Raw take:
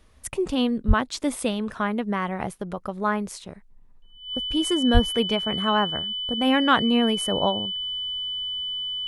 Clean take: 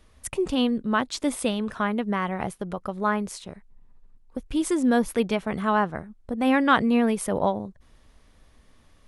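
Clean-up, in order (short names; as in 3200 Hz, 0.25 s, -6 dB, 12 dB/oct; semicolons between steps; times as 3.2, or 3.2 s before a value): notch 3000 Hz, Q 30; 0.87–0.99 HPF 140 Hz 24 dB/oct; 4.93–5.05 HPF 140 Hz 24 dB/oct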